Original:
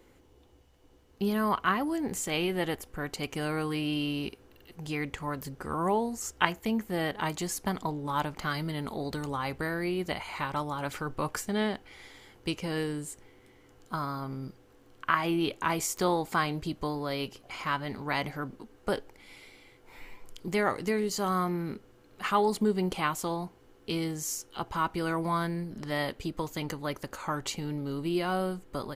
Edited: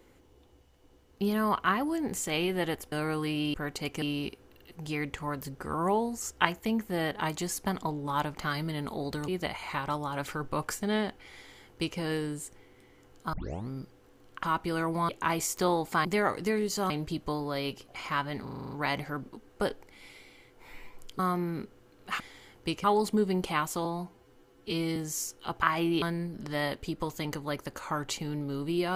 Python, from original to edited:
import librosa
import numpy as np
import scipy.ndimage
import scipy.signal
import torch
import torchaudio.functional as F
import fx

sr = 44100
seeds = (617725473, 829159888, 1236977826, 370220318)

y = fx.edit(x, sr, fx.move(start_s=2.92, length_s=0.48, to_s=4.02),
    fx.cut(start_s=9.28, length_s=0.66),
    fx.duplicate(start_s=12.0, length_s=0.64, to_s=22.32),
    fx.tape_start(start_s=13.99, length_s=0.36),
    fx.swap(start_s=15.09, length_s=0.4, other_s=24.73, other_length_s=0.66),
    fx.stutter(start_s=17.98, slice_s=0.04, count=8),
    fx.move(start_s=20.46, length_s=0.85, to_s=16.45),
    fx.stretch_span(start_s=23.33, length_s=0.74, factor=1.5), tone=tone)